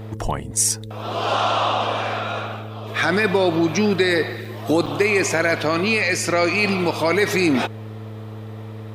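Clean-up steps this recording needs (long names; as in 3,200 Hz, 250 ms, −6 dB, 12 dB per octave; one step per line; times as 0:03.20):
clipped peaks rebuilt −6 dBFS
hum removal 107.7 Hz, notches 5
notch filter 450 Hz, Q 30
repair the gap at 0:04.45/0:04.86, 4.9 ms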